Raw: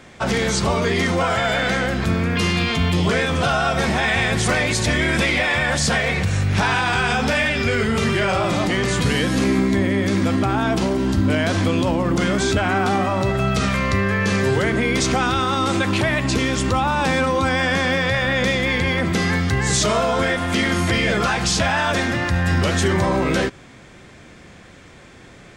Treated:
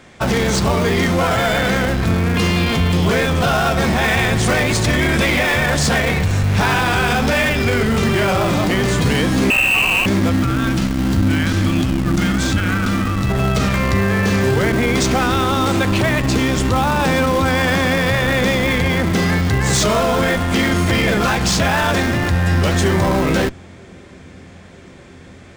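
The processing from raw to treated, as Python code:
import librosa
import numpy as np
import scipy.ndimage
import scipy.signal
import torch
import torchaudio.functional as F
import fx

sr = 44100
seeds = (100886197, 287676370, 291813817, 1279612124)

p1 = fx.echo_wet_lowpass(x, sr, ms=952, feedback_pct=80, hz=480.0, wet_db=-24)
p2 = fx.freq_invert(p1, sr, carrier_hz=2900, at=(9.5, 10.06))
p3 = fx.spec_erase(p2, sr, start_s=10.33, length_s=2.97, low_hz=350.0, high_hz=1100.0)
p4 = fx.schmitt(p3, sr, flips_db=-19.0)
y = p3 + (p4 * librosa.db_to_amplitude(-3.5))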